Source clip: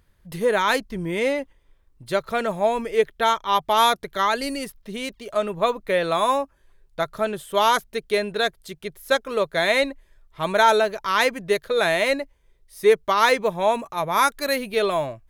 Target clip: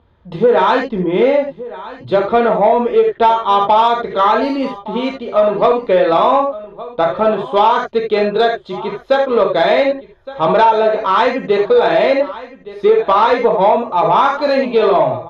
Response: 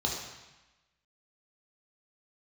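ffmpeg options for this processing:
-filter_complex "[0:a]lowshelf=frequency=180:gain=-8.5[link_01];[1:a]atrim=start_sample=2205,atrim=end_sample=3969,asetrate=42777,aresample=44100[link_02];[link_01][link_02]afir=irnorm=-1:irlink=0,acompressor=threshold=-12dB:ratio=6,lowpass=1900,aecho=1:1:1166:0.126,acontrast=54"

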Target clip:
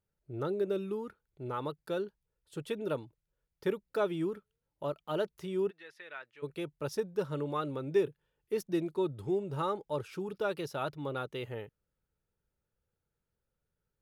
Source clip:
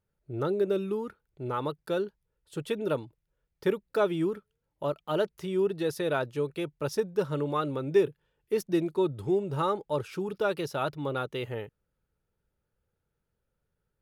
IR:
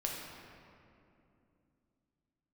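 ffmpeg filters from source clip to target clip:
-filter_complex "[0:a]asplit=3[link_01][link_02][link_03];[link_01]afade=type=out:start_time=5.69:duration=0.02[link_04];[link_02]bandpass=frequency=2000:width_type=q:width=2.6:csg=0,afade=type=in:start_time=5.69:duration=0.02,afade=type=out:start_time=6.42:duration=0.02[link_05];[link_03]afade=type=in:start_time=6.42:duration=0.02[link_06];[link_04][link_05][link_06]amix=inputs=3:normalize=0,volume=-5dB"

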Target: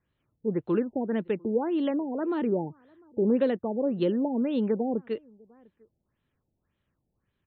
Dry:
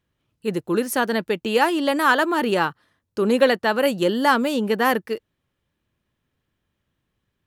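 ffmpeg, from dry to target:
ffmpeg -i in.wav -filter_complex "[0:a]acrossover=split=480[link_01][link_02];[link_02]acompressor=threshold=-34dB:ratio=6[link_03];[link_01][link_03]amix=inputs=2:normalize=0,asplit=2[link_04][link_05];[link_05]adelay=699.7,volume=-28dB,highshelf=frequency=4000:gain=-15.7[link_06];[link_04][link_06]amix=inputs=2:normalize=0,afftfilt=real='re*lt(b*sr/1024,850*pow(4400/850,0.5+0.5*sin(2*PI*1.8*pts/sr)))':imag='im*lt(b*sr/1024,850*pow(4400/850,0.5+0.5*sin(2*PI*1.8*pts/sr)))':win_size=1024:overlap=0.75,volume=-2.5dB" out.wav

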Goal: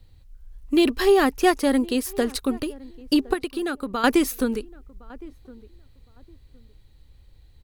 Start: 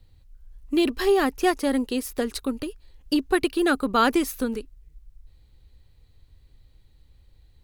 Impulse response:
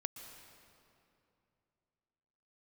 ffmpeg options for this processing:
-filter_complex "[0:a]asettb=1/sr,asplit=3[link_01][link_02][link_03];[link_01]atrim=end=3.334[link_04];[link_02]atrim=start=3.33:end=4.04,asetpts=PTS-STARTPTS,afade=type=in:duration=0.004:curve=qsin,afade=type=out:start_time=0.706:duration=0.004:curve=qsin,acompressor=threshold=-28dB:ratio=6[link_05];[link_03]atrim=start=4.036[link_06];[link_04][link_05]acrossfade=duration=0.004:curve1=hsin:curve2=qsin[link_07];[link_07][link_06]acrossfade=duration=0.004:curve1=qsin:curve2=hsin,asplit=2[link_08][link_09];[link_09]adelay=1063,lowpass=frequency=1000:poles=1,volume=-21dB,asplit=2[link_10][link_11];[link_11]adelay=1063,lowpass=frequency=1000:poles=1,volume=0.23[link_12];[link_08][link_10][link_12]amix=inputs=3:normalize=0,volume=3dB"

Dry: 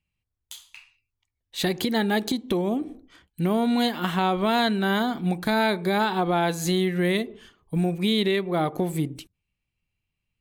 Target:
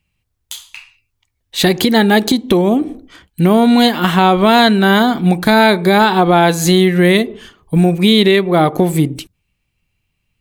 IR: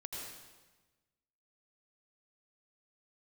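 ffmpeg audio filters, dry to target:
-af "apsyclip=14dB,volume=-1.5dB"

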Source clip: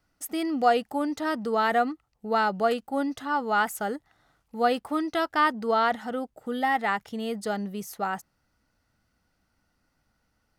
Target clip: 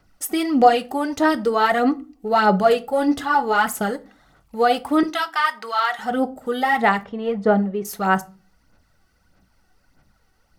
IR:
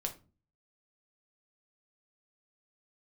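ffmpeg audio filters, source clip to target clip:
-filter_complex "[0:a]asettb=1/sr,asplit=3[link_01][link_02][link_03];[link_01]atrim=end=2.804[link_04];[link_02]atrim=start=2.8:end=3.35,asetpts=PTS-STARTPTS,afade=type=in:duration=0.004:curve=qsin,afade=type=out:start_time=0.546:duration=0.004:curve=qsin,asplit=2[link_05][link_06];[link_06]adelay=13,volume=-5dB[link_07];[link_05][link_07]amix=inputs=2:normalize=0,atrim=end_sample=24255[link_08];[link_03]atrim=start=3.346[link_09];[link_04][link_08]acrossfade=duration=0.004:curve1=hsin:curve2=qsin[link_10];[link_10][link_09]acrossfade=duration=0.004:curve1=qsin:curve2=hsin,asplit=2[link_11][link_12];[link_12]alimiter=limit=-20.5dB:level=0:latency=1,volume=2dB[link_13];[link_11][link_13]amix=inputs=2:normalize=0,asettb=1/sr,asplit=3[link_14][link_15][link_16];[link_14]atrim=end=7.034[link_17];[link_15]atrim=start=7.03:end=7.85,asetpts=PTS-STARTPTS,afade=type=in:duration=0.004:curve=qsin,afade=type=out:start_time=0.816:duration=0.004:curve=qsin,lowpass=1800[link_18];[link_16]atrim=start=7.846[link_19];[link_17][link_18]acrossfade=duration=0.004:curve1=hsin:curve2=qsin[link_20];[link_20][link_19]acrossfade=duration=0.004:curve1=qsin:curve2=hsin,aphaser=in_gain=1:out_gain=1:delay=2.7:decay=0.54:speed=1.6:type=sinusoidal,asettb=1/sr,asplit=3[link_21][link_22][link_23];[link_21]atrim=end=5.034[link_24];[link_22]atrim=start=5.03:end=5.99,asetpts=PTS-STARTPTS,afade=type=in:duration=0.004:curve=qsin,afade=type=out:start_time=0.956:duration=0.004:curve=qsin,highpass=1100[link_25];[link_23]atrim=start=5.986[link_26];[link_24][link_25]acrossfade=duration=0.004:curve1=hsin:curve2=qsin[link_27];[link_27][link_26]acrossfade=duration=0.004:curve1=qsin:curve2=hsin,asplit=2[link_28][link_29];[1:a]atrim=start_sample=2205[link_30];[link_29][link_30]afir=irnorm=-1:irlink=0,volume=-2.5dB[link_31];[link_28][link_31]amix=inputs=2:normalize=0,volume=-4.5dB"

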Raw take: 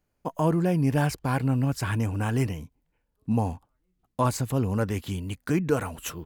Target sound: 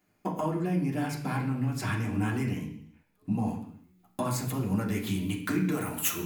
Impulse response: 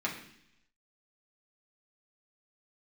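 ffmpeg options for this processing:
-filter_complex "[0:a]asetnsamples=nb_out_samples=441:pad=0,asendcmd='3.48 highshelf g -2;5.72 highshelf g 6.5',highshelf=frequency=9700:gain=-10,acompressor=threshold=-35dB:ratio=6,aemphasis=mode=production:type=50kf[link_01];[1:a]atrim=start_sample=2205,afade=type=out:start_time=0.43:duration=0.01,atrim=end_sample=19404[link_02];[link_01][link_02]afir=irnorm=-1:irlink=0,volume=2dB"

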